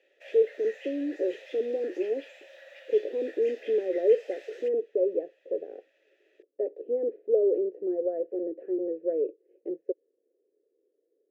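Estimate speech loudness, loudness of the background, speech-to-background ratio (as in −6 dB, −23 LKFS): −29.5 LKFS, −48.5 LKFS, 19.0 dB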